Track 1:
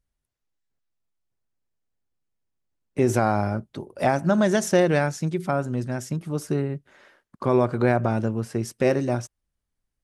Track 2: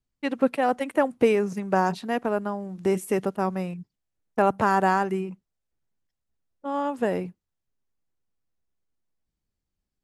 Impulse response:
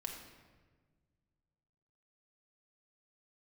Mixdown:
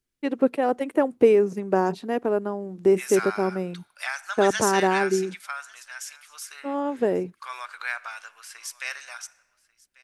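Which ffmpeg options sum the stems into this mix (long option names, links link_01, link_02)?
-filter_complex "[0:a]highpass=frequency=1400:width=0.5412,highpass=frequency=1400:width=1.3066,bandreject=frequency=1900:width=24,volume=1.5dB,asplit=3[link_01][link_02][link_03];[link_02]volume=-11.5dB[link_04];[link_03]volume=-22dB[link_05];[1:a]equalizer=frequency=380:width=1.3:gain=10,volume=-4dB[link_06];[2:a]atrim=start_sample=2205[link_07];[link_04][link_07]afir=irnorm=-1:irlink=0[link_08];[link_05]aecho=0:1:1142:1[link_09];[link_01][link_06][link_08][link_09]amix=inputs=4:normalize=0"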